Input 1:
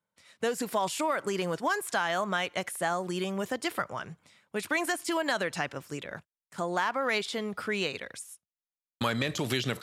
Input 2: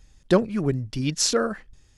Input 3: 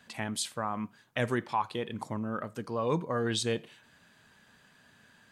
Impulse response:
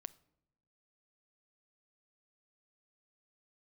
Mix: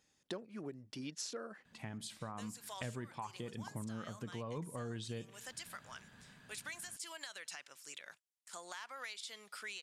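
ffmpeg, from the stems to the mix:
-filter_complex "[0:a]lowpass=8.8k,aderivative,alimiter=level_in=8.5dB:limit=-24dB:level=0:latency=1:release=437,volume=-8.5dB,adelay=1950,volume=2dB[a];[1:a]highpass=240,volume=-10.5dB,asplit=2[b][c];[2:a]bass=f=250:g=8,treble=f=4k:g=-3,adelay=1650,volume=-4dB,asplit=2[d][e];[e]volume=-3dB[f];[c]apad=whole_len=307234[g];[d][g]sidechaincompress=threshold=-50dB:ratio=8:attack=16:release=992[h];[3:a]atrim=start_sample=2205[i];[f][i]afir=irnorm=-1:irlink=0[j];[a][b][h][j]amix=inputs=4:normalize=0,acompressor=threshold=-42dB:ratio=5"

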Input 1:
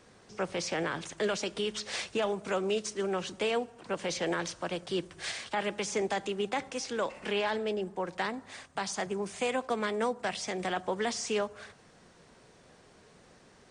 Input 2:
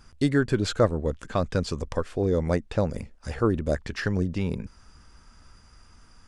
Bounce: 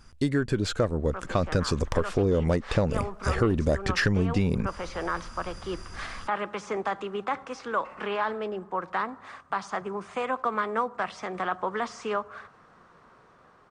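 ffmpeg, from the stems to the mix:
-filter_complex "[0:a]lowpass=f=2k:p=1,equalizer=f=1.2k:w=1.8:g=15,adelay=750,volume=-13dB[a];[1:a]deesser=0.6,volume=-0.5dB[b];[a][b]amix=inputs=2:normalize=0,dynaudnorm=f=390:g=7:m=12dB,asoftclip=type=tanh:threshold=-7.5dB,acompressor=threshold=-20dB:ratio=6"

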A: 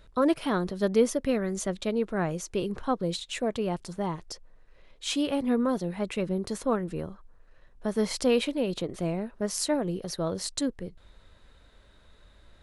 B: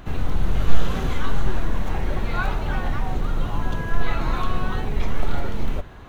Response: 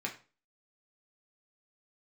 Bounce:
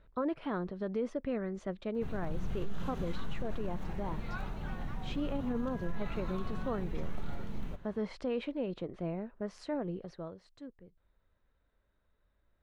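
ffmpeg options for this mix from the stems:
-filter_complex "[0:a]lowpass=2.2k,volume=-7dB,afade=t=out:st=9.98:d=0.39:silence=0.266073[a];[1:a]equalizer=f=180:w=1.9:g=8.5,adelay=1950,volume=-16dB[b];[a][b]amix=inputs=2:normalize=0,alimiter=level_in=1.5dB:limit=-24dB:level=0:latency=1:release=36,volume=-1.5dB"

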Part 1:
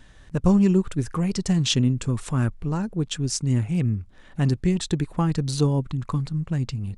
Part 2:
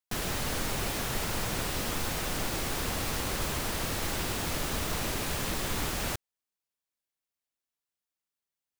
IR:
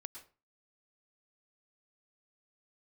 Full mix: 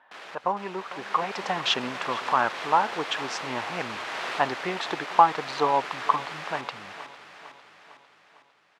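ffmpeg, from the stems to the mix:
-filter_complex "[0:a]equalizer=f=850:w=1.1:g=14,adynamicsmooth=sensitivity=7:basefreq=3.3k,volume=-4dB,asplit=3[a][b][c];[b]volume=-19dB[d];[1:a]asoftclip=type=hard:threshold=-30dB,volume=-2.5dB,asplit=2[e][f];[f]volume=-3.5dB[g];[c]apad=whole_len=387876[h];[e][h]sidechaincompress=threshold=-34dB:ratio=4:attack=16:release=347[i];[d][g]amix=inputs=2:normalize=0,aecho=0:1:453|906|1359|1812|2265|2718|3171|3624:1|0.53|0.281|0.149|0.0789|0.0418|0.0222|0.0117[j];[a][i][j]amix=inputs=3:normalize=0,highpass=740,lowpass=2.8k,dynaudnorm=f=730:g=3:m=9.5dB"

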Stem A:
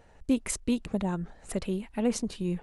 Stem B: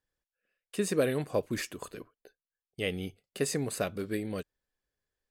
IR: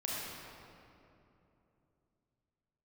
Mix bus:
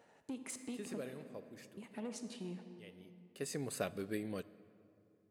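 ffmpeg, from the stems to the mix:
-filter_complex "[0:a]highpass=190,acompressor=threshold=-36dB:ratio=3,asoftclip=type=tanh:threshold=-30.5dB,volume=-7.5dB,asplit=3[a][b][c];[a]atrim=end=1,asetpts=PTS-STARTPTS,afade=t=out:st=0.996:d=0.004:c=hsin[d];[b]atrim=start=1:end=1.77,asetpts=PTS-STARTPTS,volume=0[e];[c]atrim=start=1.77,asetpts=PTS-STARTPTS,afade=t=in:d=0.004:c=hsin[f];[d][e][f]concat=n=3:v=0:a=1,asplit=3[g][h][i];[h]volume=-8dB[j];[1:a]volume=3.5dB,afade=t=out:st=0.89:d=0.63:silence=0.298538,afade=t=in:st=3.12:d=0.62:silence=0.266073,asplit=2[k][l];[l]volume=-20.5dB[m];[i]apad=whole_len=233816[n];[k][n]sidechaincompress=threshold=-53dB:ratio=8:attack=16:release=1390[o];[2:a]atrim=start_sample=2205[p];[j][m]amix=inputs=2:normalize=0[q];[q][p]afir=irnorm=-1:irlink=0[r];[g][o][r]amix=inputs=3:normalize=0,highpass=99"

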